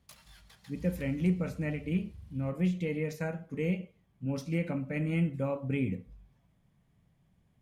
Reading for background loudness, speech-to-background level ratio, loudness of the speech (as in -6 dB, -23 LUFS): -52.0 LUFS, 18.5 dB, -33.5 LUFS